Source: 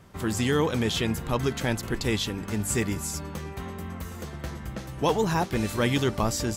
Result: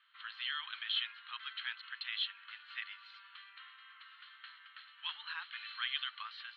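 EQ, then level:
Butterworth high-pass 1,500 Hz 36 dB per octave
Chebyshev low-pass with heavy ripple 4,300 Hz, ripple 9 dB
0.0 dB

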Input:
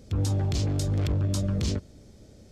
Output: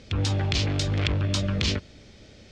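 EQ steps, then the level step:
low-pass filter 6,100 Hz 12 dB per octave
parametric band 2,600 Hz +15 dB 2.3 octaves
0.0 dB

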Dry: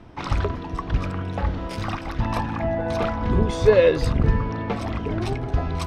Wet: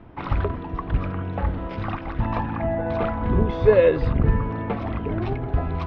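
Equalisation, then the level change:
Bessel low-pass filter 2,300 Hz, order 4
0.0 dB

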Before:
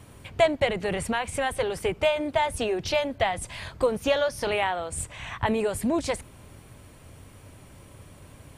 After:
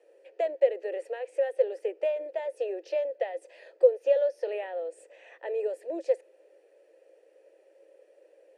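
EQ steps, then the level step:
formant filter e
Chebyshev high-pass with heavy ripple 320 Hz, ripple 3 dB
flat-topped bell 2,300 Hz −11 dB
+7.5 dB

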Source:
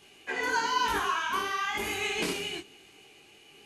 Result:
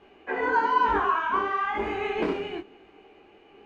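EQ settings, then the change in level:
low-pass filter 1,200 Hz 12 dB per octave
parametric band 130 Hz −14.5 dB 0.73 octaves
+8.0 dB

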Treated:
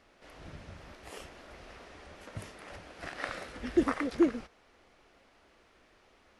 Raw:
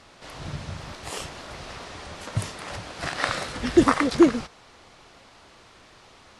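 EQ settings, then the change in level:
octave-band graphic EQ 125/1,000/4,000/8,000 Hz −11/−6/−7/−9 dB
−7.5 dB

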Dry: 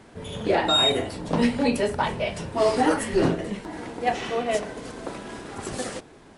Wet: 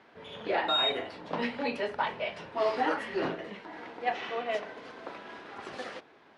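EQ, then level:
high-pass filter 1,100 Hz 6 dB per octave
high-frequency loss of the air 280 metres
high-shelf EQ 10,000 Hz +5.5 dB
0.0 dB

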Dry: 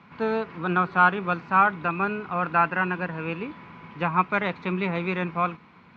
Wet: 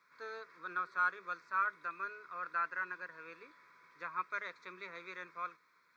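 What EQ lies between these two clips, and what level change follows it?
first difference
parametric band 210 Hz +13.5 dB 0.38 octaves
phaser with its sweep stopped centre 790 Hz, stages 6
+2.0 dB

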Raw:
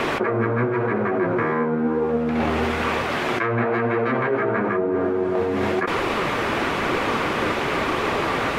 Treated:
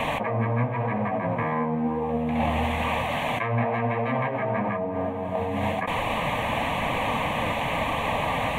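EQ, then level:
parametric band 2,000 Hz −4 dB 1.4 octaves
phaser with its sweep stopped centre 1,400 Hz, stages 6
+2.0 dB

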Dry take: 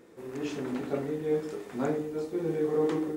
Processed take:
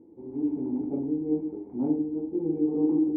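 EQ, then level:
formant resonators in series u
parametric band 76 Hz +10.5 dB 1.1 octaves
+8.5 dB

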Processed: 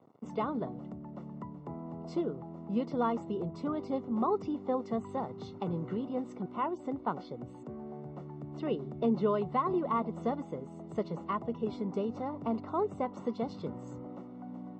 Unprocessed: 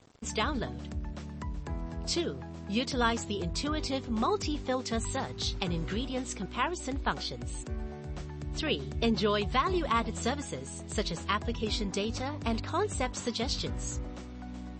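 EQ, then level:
Savitzky-Golay smoothing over 65 samples
high-pass filter 140 Hz 24 dB per octave
0.0 dB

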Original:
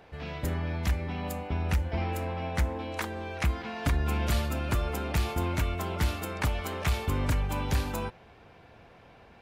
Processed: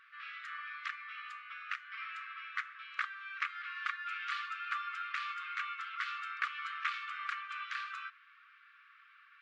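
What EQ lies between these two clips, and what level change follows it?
linear-phase brick-wall high-pass 1,100 Hz
head-to-tape spacing loss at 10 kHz 43 dB
+8.5 dB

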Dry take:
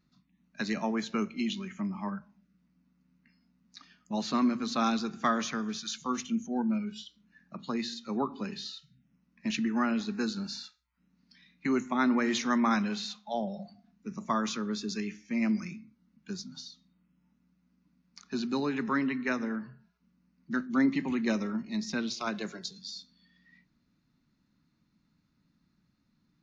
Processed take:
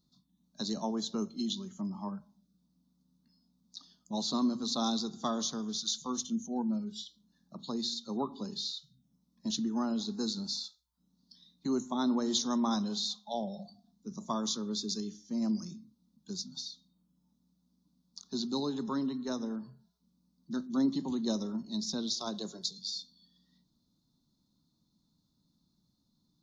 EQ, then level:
drawn EQ curve 980 Hz 0 dB, 2,400 Hz −28 dB, 3,500 Hz +7 dB
−3.0 dB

